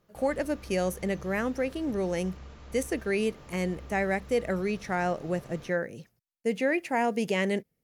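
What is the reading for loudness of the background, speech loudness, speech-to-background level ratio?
-48.5 LUFS, -30.0 LUFS, 18.5 dB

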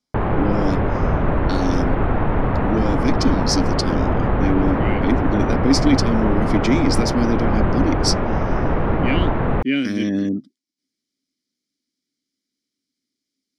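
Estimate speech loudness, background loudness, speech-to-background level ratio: -22.5 LUFS, -21.0 LUFS, -1.5 dB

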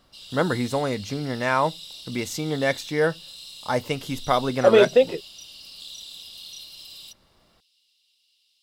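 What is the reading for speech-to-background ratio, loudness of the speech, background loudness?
16.0 dB, -23.5 LUFS, -39.5 LUFS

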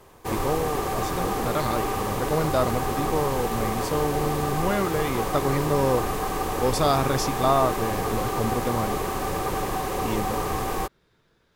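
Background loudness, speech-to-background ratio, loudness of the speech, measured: -28.0 LUFS, 0.5 dB, -27.5 LUFS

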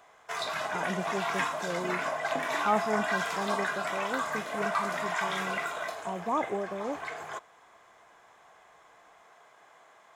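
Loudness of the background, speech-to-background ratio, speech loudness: -32.5 LUFS, -3.5 dB, -36.0 LUFS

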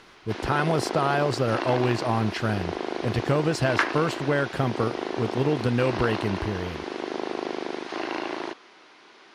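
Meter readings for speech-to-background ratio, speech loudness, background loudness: 5.0 dB, -26.5 LUFS, -31.5 LUFS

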